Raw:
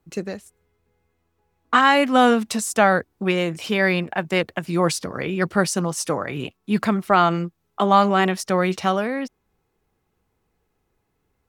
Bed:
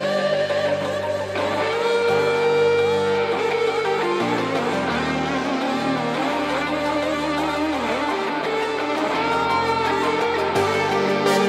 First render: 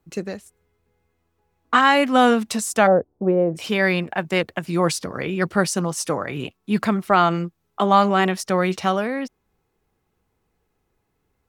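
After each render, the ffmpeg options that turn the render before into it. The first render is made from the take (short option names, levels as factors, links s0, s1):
-filter_complex "[0:a]asplit=3[s0][s1][s2];[s0]afade=t=out:st=2.86:d=0.02[s3];[s1]lowpass=f=600:t=q:w=2.1,afade=t=in:st=2.86:d=0.02,afade=t=out:st=3.55:d=0.02[s4];[s2]afade=t=in:st=3.55:d=0.02[s5];[s3][s4][s5]amix=inputs=3:normalize=0"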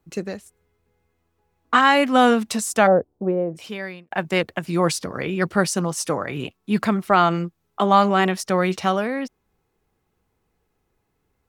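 -filter_complex "[0:a]asplit=2[s0][s1];[s0]atrim=end=4.11,asetpts=PTS-STARTPTS,afade=t=out:st=2.97:d=1.14[s2];[s1]atrim=start=4.11,asetpts=PTS-STARTPTS,afade=t=in:d=0.004:c=hsin[s3];[s2][s3]concat=n=2:v=0:a=1"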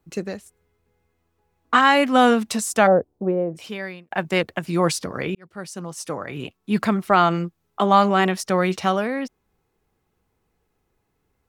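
-filter_complex "[0:a]asplit=2[s0][s1];[s0]atrim=end=5.35,asetpts=PTS-STARTPTS,afade=t=out:st=5.346:d=0.004:c=hsin[s2];[s1]atrim=start=5.35,asetpts=PTS-STARTPTS,afade=t=in:d=1.45[s3];[s2][s3]concat=n=2:v=0:a=1"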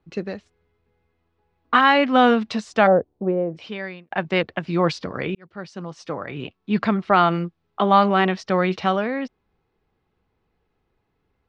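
-af "lowpass=f=4500:w=0.5412,lowpass=f=4500:w=1.3066"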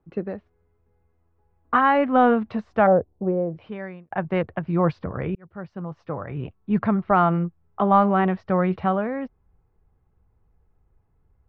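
-af "lowpass=1300,asubboost=boost=4.5:cutoff=120"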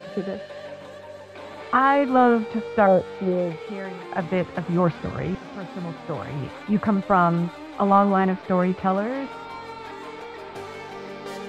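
-filter_complex "[1:a]volume=0.15[s0];[0:a][s0]amix=inputs=2:normalize=0"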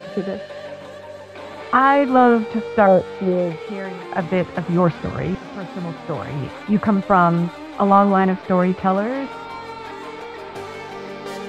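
-af "volume=1.58,alimiter=limit=0.794:level=0:latency=1"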